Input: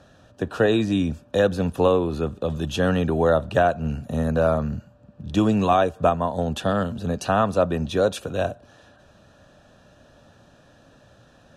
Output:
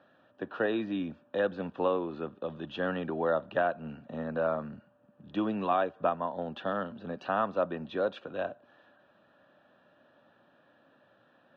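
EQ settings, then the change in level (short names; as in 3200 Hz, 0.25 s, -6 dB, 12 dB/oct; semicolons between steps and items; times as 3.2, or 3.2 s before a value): speaker cabinet 280–3100 Hz, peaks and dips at 440 Hz -5 dB, 700 Hz -3 dB, 2500 Hz -4 dB; -6.5 dB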